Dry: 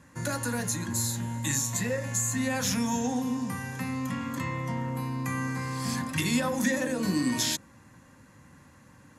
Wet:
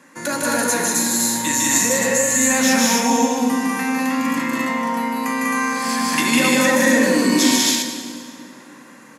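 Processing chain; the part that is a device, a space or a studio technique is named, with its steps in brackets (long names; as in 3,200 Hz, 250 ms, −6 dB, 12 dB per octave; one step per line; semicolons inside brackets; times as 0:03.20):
stadium PA (high-pass filter 230 Hz 24 dB per octave; parametric band 2,200 Hz +3 dB 0.43 octaves; loudspeakers that aren't time-aligned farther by 53 metres −2 dB, 67 metres −2 dB, 91 metres −2 dB; convolution reverb RT60 2.3 s, pre-delay 31 ms, DRR 7.5 dB)
level +8 dB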